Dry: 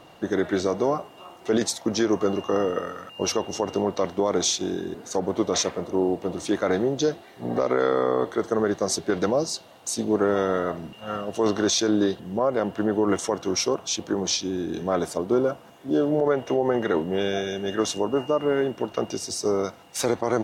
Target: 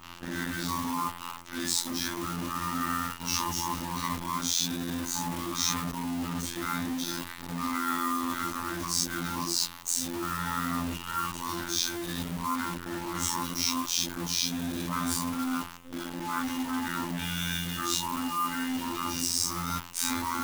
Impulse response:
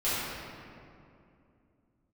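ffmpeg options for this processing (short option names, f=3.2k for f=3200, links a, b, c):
-filter_complex "[0:a]lowshelf=f=120:g=-2.5[a];[1:a]atrim=start_sample=2205,atrim=end_sample=4410[b];[a][b]afir=irnorm=-1:irlink=0,afftfilt=real='re*(1-between(b*sr/4096,330,830))':imag='im*(1-between(b*sr/4096,330,830))':win_size=4096:overlap=0.75,areverse,acompressor=threshold=-29dB:ratio=12,areverse,afftfilt=real='hypot(re,im)*cos(PI*b)':imag='0':win_size=2048:overlap=0.75,acrossover=split=1000[c][d];[c]asoftclip=type=tanh:threshold=-32.5dB[e];[e][d]amix=inputs=2:normalize=0,acrusher=bits=8:dc=4:mix=0:aa=0.000001,adynamicequalizer=threshold=0.00282:dfrequency=7800:dqfactor=0.7:tfrequency=7800:tqfactor=0.7:attack=5:release=100:ratio=0.375:range=3.5:mode=boostabove:tftype=highshelf,volume=5.5dB"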